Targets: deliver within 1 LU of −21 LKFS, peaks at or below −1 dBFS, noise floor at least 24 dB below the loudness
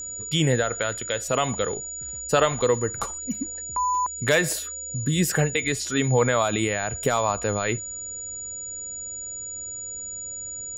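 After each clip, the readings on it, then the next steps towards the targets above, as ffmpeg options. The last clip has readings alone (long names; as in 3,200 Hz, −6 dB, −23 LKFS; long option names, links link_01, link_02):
interfering tone 6,900 Hz; level of the tone −32 dBFS; integrated loudness −25.0 LKFS; sample peak −7.0 dBFS; target loudness −21.0 LKFS
→ -af "bandreject=frequency=6900:width=30"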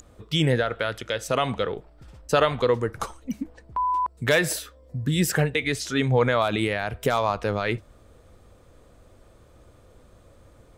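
interfering tone none found; integrated loudness −25.0 LKFS; sample peak −7.5 dBFS; target loudness −21.0 LKFS
→ -af "volume=4dB"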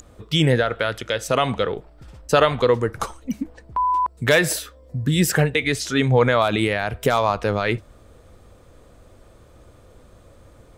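integrated loudness −21.0 LKFS; sample peak −3.5 dBFS; background noise floor −50 dBFS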